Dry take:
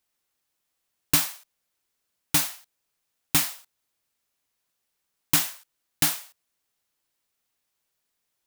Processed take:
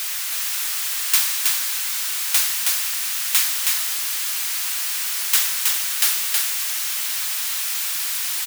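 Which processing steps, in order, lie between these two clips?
converter with a step at zero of −21 dBFS
high-pass filter 1,400 Hz 12 dB per octave
single-tap delay 320 ms −3 dB
level +1.5 dB

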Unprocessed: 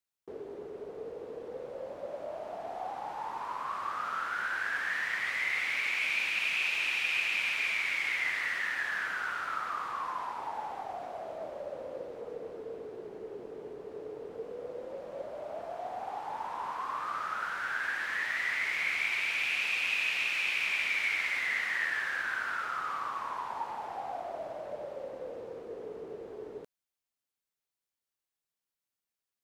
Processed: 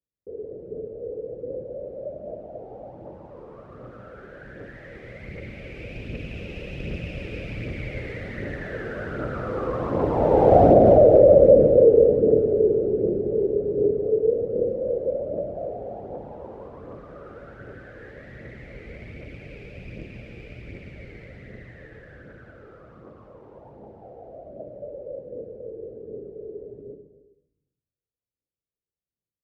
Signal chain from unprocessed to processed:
stylus tracing distortion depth 0.028 ms
source passing by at 0:10.65, 12 m/s, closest 3.1 metres
high-pass filter 51 Hz
spectral tilt −4 dB per octave
single-tap delay 277 ms −12.5 dB
convolution reverb RT60 0.70 s, pre-delay 111 ms, DRR 1.5 dB
phase shifter 1.3 Hz, delay 2.6 ms, feedback 35%
low shelf with overshoot 710 Hz +11 dB, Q 3
boost into a limiter +18.5 dB
level −3.5 dB

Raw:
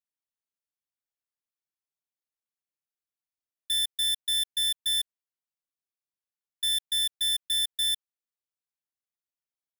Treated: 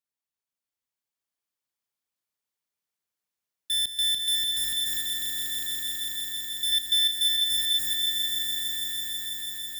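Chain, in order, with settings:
high-pass filter 44 Hz 12 dB per octave
0:03.73–0:04.77: leveller curve on the samples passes 5
0:06.72–0:07.19: parametric band 2,800 Hz +6.5 dB 1.2 octaves
echo that builds up and dies away 164 ms, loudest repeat 5, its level −5 dB

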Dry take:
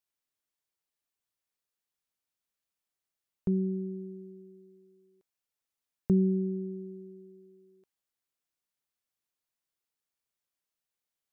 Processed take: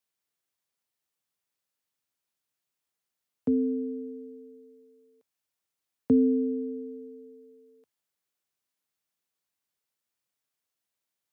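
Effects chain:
frequency shifter +70 Hz
level +3 dB

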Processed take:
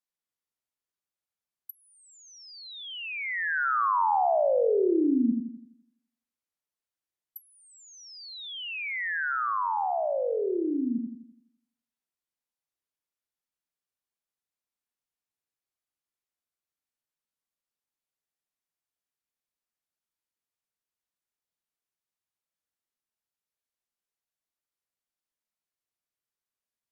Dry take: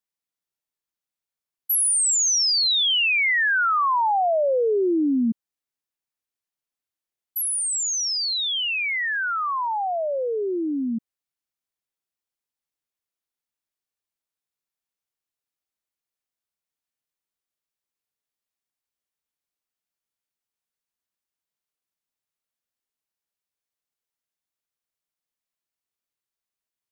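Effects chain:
treble cut that deepens with the level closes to 1,400 Hz
bucket-brigade delay 84 ms, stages 1,024, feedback 46%, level −4 dB
level −4.5 dB

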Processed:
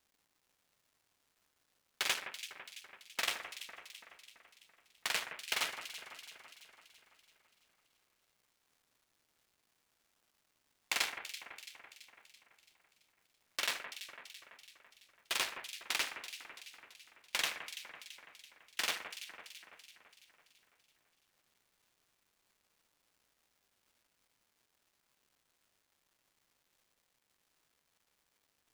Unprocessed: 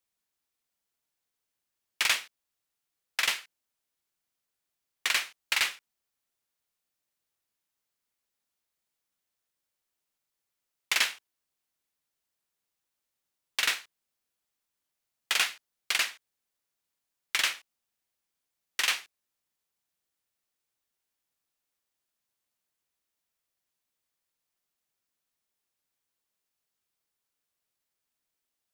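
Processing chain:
sub-harmonics by changed cycles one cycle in 2, muted
low-shelf EQ 190 Hz −7 dB
surface crackle 590 per second −58 dBFS
on a send: delay that swaps between a low-pass and a high-pass 167 ms, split 2,300 Hz, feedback 73%, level −8 dB
on the sum: level −5 dB

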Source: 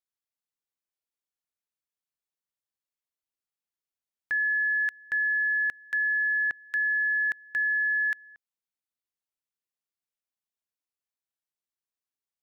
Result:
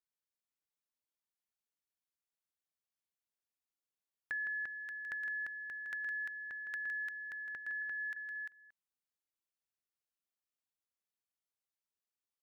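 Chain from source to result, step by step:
0:07.37–0:07.82: low-pass filter 1,700 Hz 6 dB per octave
downward compressor 4 to 1, threshold −31 dBFS, peak gain reduction 5.5 dB
on a send: multi-tap delay 161/346 ms −7.5/−4 dB
on the sum: level −6.5 dB

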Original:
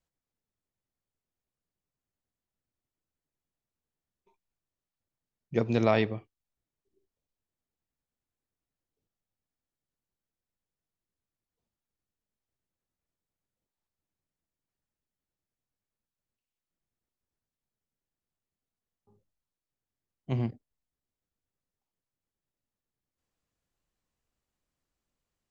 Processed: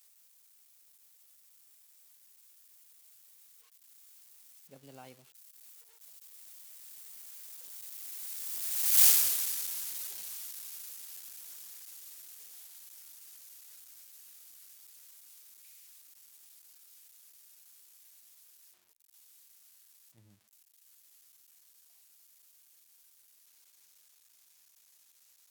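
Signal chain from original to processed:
spike at every zero crossing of −17 dBFS
source passing by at 0:09.03, 52 m/s, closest 3.7 metres
level +9 dB

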